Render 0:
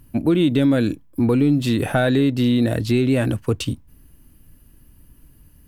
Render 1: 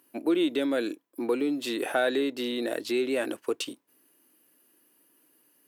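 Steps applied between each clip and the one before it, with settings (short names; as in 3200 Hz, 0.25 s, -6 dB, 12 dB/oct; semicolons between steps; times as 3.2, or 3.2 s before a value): Chebyshev high-pass 350 Hz, order 3; gain -4.5 dB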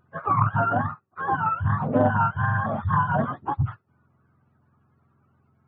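spectrum mirrored in octaves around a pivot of 620 Hz; Doppler distortion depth 0.23 ms; gain +6 dB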